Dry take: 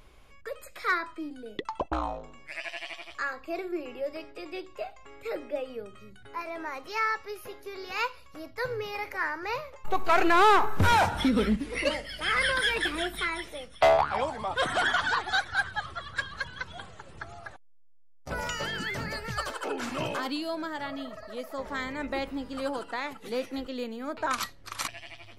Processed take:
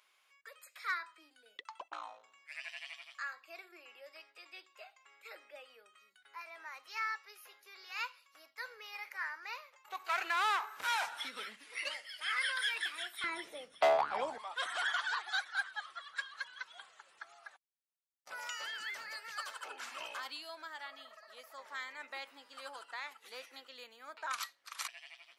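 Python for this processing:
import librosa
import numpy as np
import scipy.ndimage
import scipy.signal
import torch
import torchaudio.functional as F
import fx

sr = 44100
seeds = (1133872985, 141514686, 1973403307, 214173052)

y = fx.highpass(x, sr, hz=fx.steps((0.0, 1300.0), (13.24, 290.0), (14.38, 1100.0)), slope=12)
y = F.gain(torch.from_numpy(y), -7.0).numpy()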